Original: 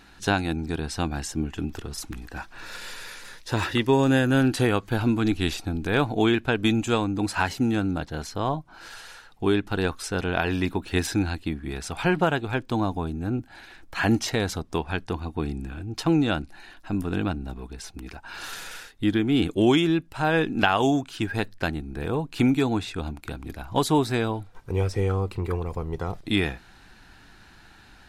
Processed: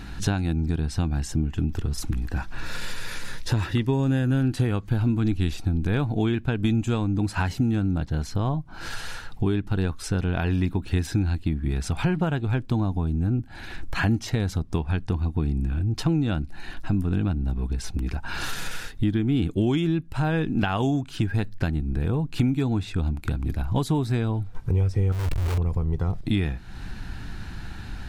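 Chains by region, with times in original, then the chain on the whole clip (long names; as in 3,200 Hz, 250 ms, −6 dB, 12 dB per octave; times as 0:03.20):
0:25.12–0:25.58: comparator with hysteresis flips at −40.5 dBFS + parametric band 200 Hz −12 dB 1.4 octaves
whole clip: bass and treble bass +13 dB, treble −1 dB; downward compressor 3 to 1, threshold −33 dBFS; level +7.5 dB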